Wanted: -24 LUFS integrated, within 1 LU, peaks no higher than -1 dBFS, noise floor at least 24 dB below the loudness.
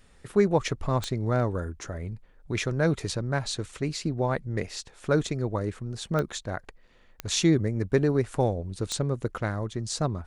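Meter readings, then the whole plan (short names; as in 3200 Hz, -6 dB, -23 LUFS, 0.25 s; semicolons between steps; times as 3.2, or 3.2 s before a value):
clicks 4; loudness -28.5 LUFS; peak -10.0 dBFS; loudness target -24.0 LUFS
-> de-click; gain +4.5 dB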